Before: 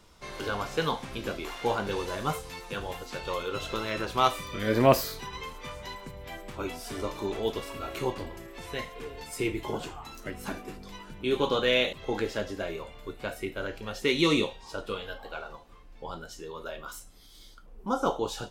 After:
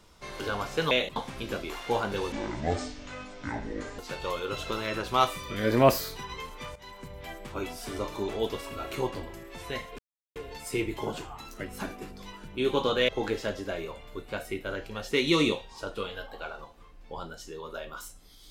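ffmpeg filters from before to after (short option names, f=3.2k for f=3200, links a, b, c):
-filter_complex "[0:a]asplit=8[a][b][c][d][e][f][g][h];[a]atrim=end=0.912[i];[b]atrim=start=11.748:end=12.002[j];[c]atrim=start=0.908:end=2.074[k];[d]atrim=start=2.07:end=3.02,asetpts=PTS-STARTPTS,asetrate=25137,aresample=44100[l];[e]atrim=start=3.016:end=5.79,asetpts=PTS-STARTPTS,afade=t=out:st=2.77:d=0.004:c=hsin:silence=0.211349[m];[f]atrim=start=5.79:end=9.02,asetpts=PTS-STARTPTS,afade=t=in:d=0.34:silence=0.211349,afade=t=out:st=3.226:d=0.004:c=hsin,apad=pad_dur=0.37[n];[g]atrim=start=9.02:end=11.752,asetpts=PTS-STARTPTS,afade=t=in:d=0.004:c=hsin[o];[h]atrim=start=11.998[p];[i][j]acrossfade=d=0.004:c1=hsin:c2=hsin[q];[q][k]acrossfade=d=0.004:c1=hsin:c2=hsin[r];[r][l]acrossfade=d=0.004:c1=hsin:c2=hsin[s];[m][n][o]concat=n=3:v=0:a=1[t];[s][t]acrossfade=d=0.004:c1=hsin:c2=hsin[u];[u][p]acrossfade=d=0.004:c1=hsin:c2=hsin"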